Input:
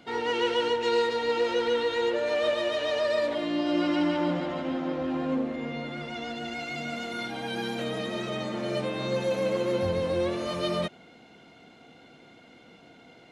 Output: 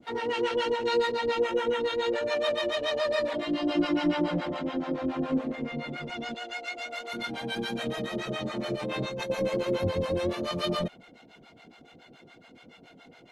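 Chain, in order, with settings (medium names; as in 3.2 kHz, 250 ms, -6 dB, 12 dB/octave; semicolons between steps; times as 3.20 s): 1.39–1.80 s: peaking EQ 4.5 kHz -13 dB 0.48 oct; 6.34–7.13 s: high-pass 410 Hz 24 dB/octave; 8.74–9.30 s: compressor with a negative ratio -32 dBFS, ratio -1; harmonic tremolo 7.1 Hz, depth 100%, crossover 590 Hz; trim +4 dB; Opus 20 kbps 48 kHz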